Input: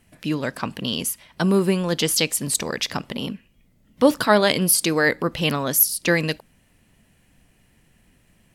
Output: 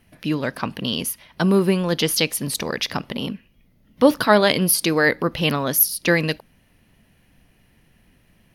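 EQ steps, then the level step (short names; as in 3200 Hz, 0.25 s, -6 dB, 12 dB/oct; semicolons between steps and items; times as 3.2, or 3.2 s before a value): bell 7700 Hz -15 dB 0.33 oct; +1.5 dB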